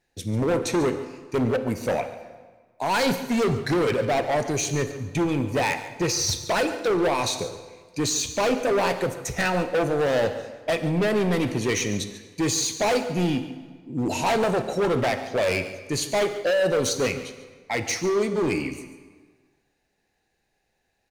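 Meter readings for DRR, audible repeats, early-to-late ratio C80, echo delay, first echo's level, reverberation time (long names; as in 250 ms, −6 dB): 9.0 dB, 1, 10.5 dB, 142 ms, −15.0 dB, 1.5 s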